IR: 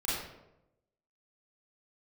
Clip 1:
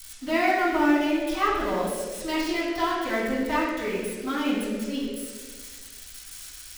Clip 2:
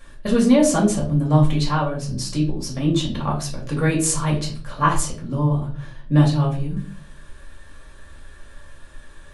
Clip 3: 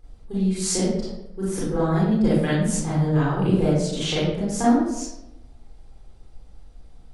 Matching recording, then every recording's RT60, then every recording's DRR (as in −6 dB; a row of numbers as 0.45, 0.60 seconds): 3; 1.6, 0.45, 0.90 seconds; −10.5, −4.5, −9.0 decibels